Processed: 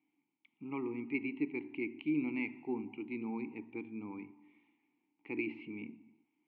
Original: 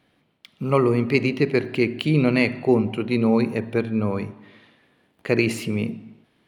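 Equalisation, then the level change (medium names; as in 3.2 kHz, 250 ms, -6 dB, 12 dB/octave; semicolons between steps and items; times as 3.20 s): vowel filter u; four-pole ladder low-pass 3.4 kHz, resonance 35%; 0.0 dB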